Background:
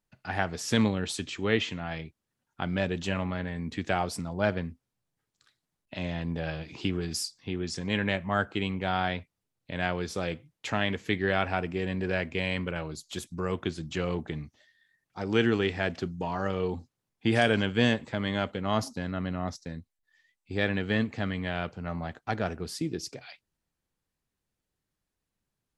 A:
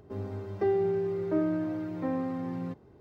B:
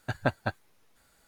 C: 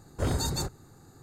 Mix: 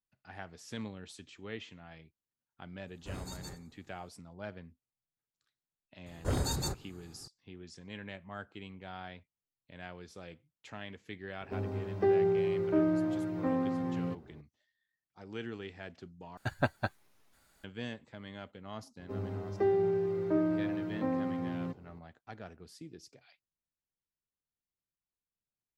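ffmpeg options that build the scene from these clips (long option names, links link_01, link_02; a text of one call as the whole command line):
ffmpeg -i bed.wav -i cue0.wav -i cue1.wav -i cue2.wav -filter_complex "[3:a]asplit=2[link_01][link_02];[1:a]asplit=2[link_03][link_04];[0:a]volume=-16.5dB[link_05];[link_01]aecho=1:1:91|182|273:0.178|0.0498|0.0139[link_06];[2:a]bandreject=frequency=480:width=10[link_07];[link_05]asplit=2[link_08][link_09];[link_08]atrim=end=16.374[link_10];[link_07]atrim=end=1.27,asetpts=PTS-STARTPTS,volume=-2.5dB[link_11];[link_09]atrim=start=17.636[link_12];[link_06]atrim=end=1.22,asetpts=PTS-STARTPTS,volume=-15dB,afade=type=in:duration=0.004:curve=hsin,afade=type=out:start_time=1.216:duration=0.004:curve=hsin,adelay=2870[link_13];[link_02]atrim=end=1.22,asetpts=PTS-STARTPTS,volume=-3.5dB,afade=type=in:duration=0.004:curve=hsin,afade=type=out:start_time=1.216:duration=0.004:curve=hsin,adelay=6060[link_14];[link_03]atrim=end=3,asetpts=PTS-STARTPTS,afade=type=in:duration=0.004:curve=hsin,afade=type=out:start_time=2.996:duration=0.004:curve=hsin,adelay=11410[link_15];[link_04]atrim=end=3,asetpts=PTS-STARTPTS,volume=-1.5dB,afade=type=in:duration=0.004:curve=hsin,afade=type=out:start_time=2.996:duration=0.004:curve=hsin,adelay=18990[link_16];[link_10][link_11]acrossfade=duration=0.004:curve1=hsin:curve2=hsin[link_17];[link_17][link_12]acrossfade=duration=0.004:curve1=hsin:curve2=hsin[link_18];[link_18][link_13][link_14][link_15][link_16]amix=inputs=5:normalize=0" out.wav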